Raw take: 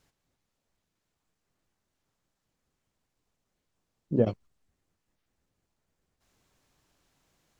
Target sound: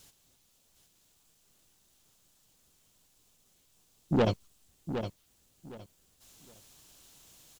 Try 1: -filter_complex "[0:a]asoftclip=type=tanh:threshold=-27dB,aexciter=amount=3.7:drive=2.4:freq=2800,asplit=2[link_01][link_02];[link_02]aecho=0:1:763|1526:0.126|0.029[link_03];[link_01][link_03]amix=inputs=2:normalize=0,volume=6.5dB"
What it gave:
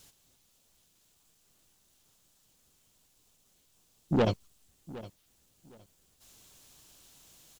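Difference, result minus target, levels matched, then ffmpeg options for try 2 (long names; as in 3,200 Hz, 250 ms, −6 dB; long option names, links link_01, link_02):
echo-to-direct −9 dB
-filter_complex "[0:a]asoftclip=type=tanh:threshold=-27dB,aexciter=amount=3.7:drive=2.4:freq=2800,asplit=2[link_01][link_02];[link_02]aecho=0:1:763|1526|2289:0.355|0.0816|0.0188[link_03];[link_01][link_03]amix=inputs=2:normalize=0,volume=6.5dB"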